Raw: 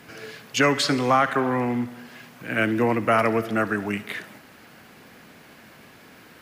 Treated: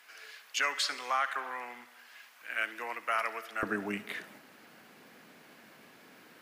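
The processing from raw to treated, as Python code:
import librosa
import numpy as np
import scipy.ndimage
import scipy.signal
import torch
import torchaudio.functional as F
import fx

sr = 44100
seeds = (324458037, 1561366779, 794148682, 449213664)

y = fx.highpass(x, sr, hz=fx.steps((0.0, 1100.0), (3.63, 190.0)), slope=12)
y = y * librosa.db_to_amplitude(-7.0)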